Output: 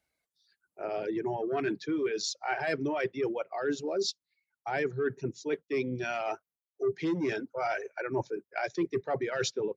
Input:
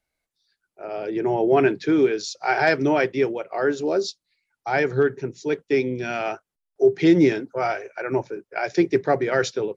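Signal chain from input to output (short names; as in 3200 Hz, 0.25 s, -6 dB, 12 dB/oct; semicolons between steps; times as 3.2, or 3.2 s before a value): soft clip -11 dBFS, distortion -18 dB; HPF 55 Hz; reverse; compressor 6:1, threshold -27 dBFS, peak gain reduction 12 dB; reverse; reverb removal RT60 1.8 s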